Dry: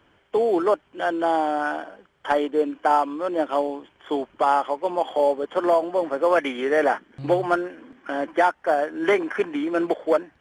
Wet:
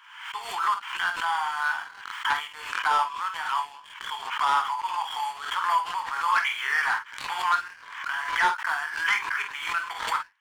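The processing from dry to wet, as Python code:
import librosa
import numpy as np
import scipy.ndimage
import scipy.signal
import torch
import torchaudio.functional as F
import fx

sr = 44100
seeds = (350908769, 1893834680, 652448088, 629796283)

p1 = scipy.signal.sosfilt(scipy.signal.ellip(4, 1.0, 40, 950.0, 'highpass', fs=sr, output='sos'), x)
p2 = fx.leveller(p1, sr, passes=2)
p3 = p2 + fx.room_early_taps(p2, sr, ms=(22, 46, 56), db=(-9.5, -9.5, -12.0), dry=0)
p4 = fx.pre_swell(p3, sr, db_per_s=67.0)
y = p4 * librosa.db_to_amplitude(-3.5)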